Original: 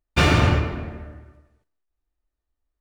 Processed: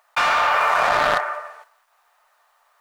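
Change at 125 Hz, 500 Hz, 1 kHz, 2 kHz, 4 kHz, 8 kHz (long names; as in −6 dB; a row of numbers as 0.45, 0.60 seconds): −24.0, +3.5, +11.0, +6.5, +0.5, +0.5 decibels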